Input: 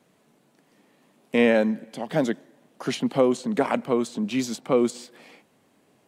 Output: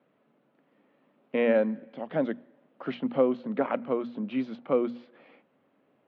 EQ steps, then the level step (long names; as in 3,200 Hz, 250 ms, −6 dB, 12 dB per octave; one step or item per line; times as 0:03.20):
high-frequency loss of the air 120 metres
loudspeaker in its box 110–3,300 Hz, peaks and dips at 260 Hz +4 dB, 550 Hz +6 dB, 1,300 Hz +5 dB
mains-hum notches 60/120/180/240 Hz
−7.0 dB